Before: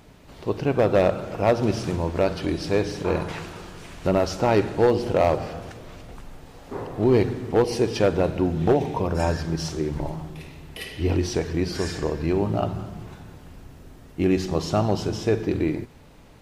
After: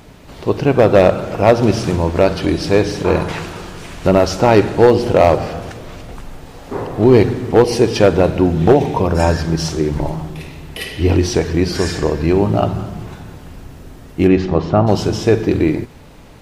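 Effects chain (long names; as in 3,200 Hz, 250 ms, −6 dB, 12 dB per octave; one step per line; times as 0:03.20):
0:14.27–0:14.86: low-pass filter 3,600 Hz → 1,500 Hz 12 dB per octave
level +9 dB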